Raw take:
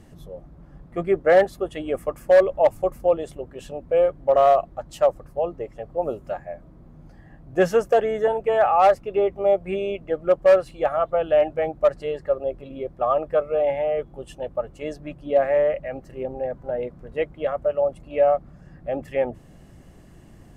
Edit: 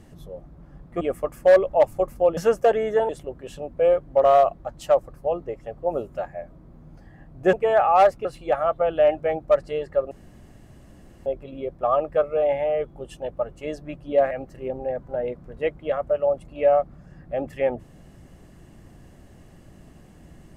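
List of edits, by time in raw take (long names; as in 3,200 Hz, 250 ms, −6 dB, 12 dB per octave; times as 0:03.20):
0:01.01–0:01.85: remove
0:07.65–0:08.37: move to 0:03.21
0:09.09–0:10.58: remove
0:12.44: splice in room tone 1.15 s
0:15.49–0:15.86: remove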